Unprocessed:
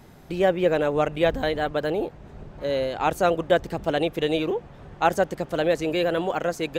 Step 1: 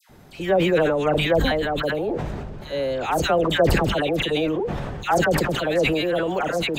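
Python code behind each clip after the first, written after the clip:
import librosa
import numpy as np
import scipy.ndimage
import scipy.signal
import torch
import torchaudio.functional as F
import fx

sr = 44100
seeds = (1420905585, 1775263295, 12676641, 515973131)

y = fx.dispersion(x, sr, late='lows', ms=96.0, hz=1400.0)
y = fx.sustainer(y, sr, db_per_s=24.0)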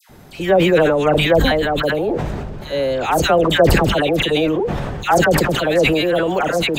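y = fx.high_shelf(x, sr, hz=9100.0, db=3.5)
y = y * librosa.db_to_amplitude(5.5)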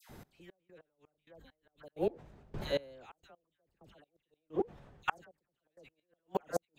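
y = fx.gate_flip(x, sr, shuts_db=-9.0, range_db=-35)
y = fx.step_gate(y, sr, bpm=130, pattern='xx....x....', floor_db=-24.0, edge_ms=4.5)
y = y * librosa.db_to_amplitude(-9.0)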